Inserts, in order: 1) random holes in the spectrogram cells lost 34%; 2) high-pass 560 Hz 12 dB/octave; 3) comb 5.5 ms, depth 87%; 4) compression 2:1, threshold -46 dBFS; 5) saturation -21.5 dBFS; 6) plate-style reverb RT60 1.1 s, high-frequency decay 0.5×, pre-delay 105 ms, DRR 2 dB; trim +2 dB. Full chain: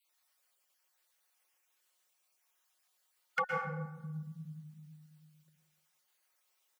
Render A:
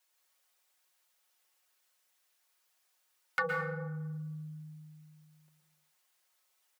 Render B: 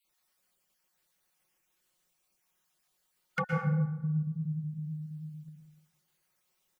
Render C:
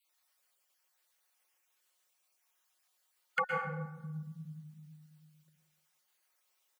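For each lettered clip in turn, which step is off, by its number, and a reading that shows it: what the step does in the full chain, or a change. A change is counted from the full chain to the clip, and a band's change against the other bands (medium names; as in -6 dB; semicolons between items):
1, 1 kHz band -4.0 dB; 2, crest factor change -6.5 dB; 5, crest factor change +3.0 dB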